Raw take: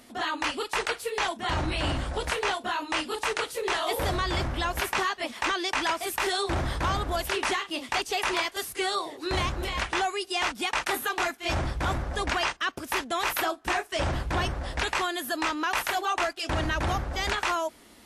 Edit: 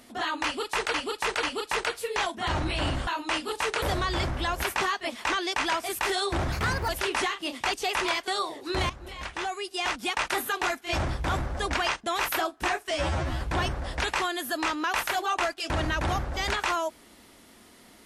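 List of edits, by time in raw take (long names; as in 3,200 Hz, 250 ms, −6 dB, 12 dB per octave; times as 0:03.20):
0:00.45–0:00.94: repeat, 3 plays
0:02.09–0:02.70: remove
0:03.45–0:03.99: remove
0:06.69–0:07.17: play speed 131%
0:08.56–0:08.84: remove
0:09.46–0:10.63: fade in, from −14.5 dB
0:12.60–0:13.08: remove
0:13.95–0:14.20: time-stretch 2×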